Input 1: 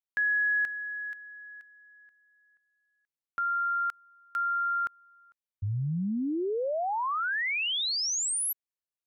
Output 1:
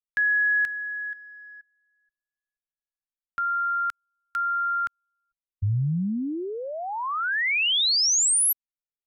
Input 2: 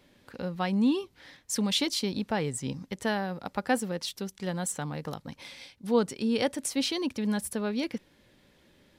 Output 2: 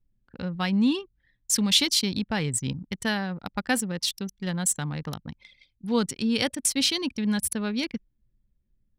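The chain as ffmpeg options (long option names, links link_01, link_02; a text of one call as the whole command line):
ffmpeg -i in.wav -af "anlmdn=0.631,equalizer=frequency=550:width_type=o:width=2.6:gain=-12,volume=9dB" out.wav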